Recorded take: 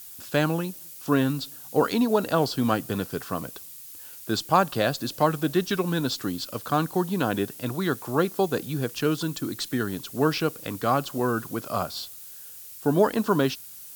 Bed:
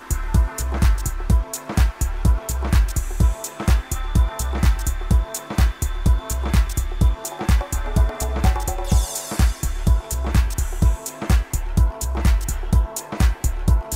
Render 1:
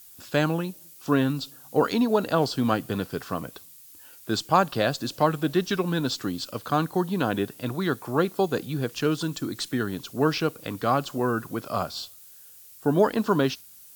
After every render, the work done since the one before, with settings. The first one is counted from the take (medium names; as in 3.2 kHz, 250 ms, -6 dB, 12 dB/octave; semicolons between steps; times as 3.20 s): noise print and reduce 6 dB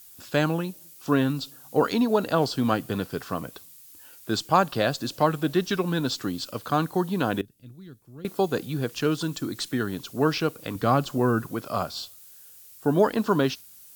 7.41–8.25 s: amplifier tone stack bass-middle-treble 10-0-1; 10.75–11.46 s: bass shelf 270 Hz +7 dB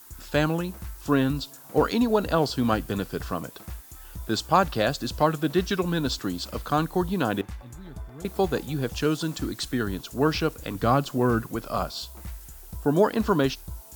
add bed -21.5 dB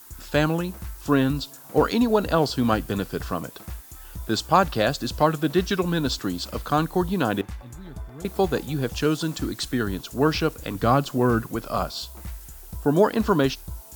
trim +2 dB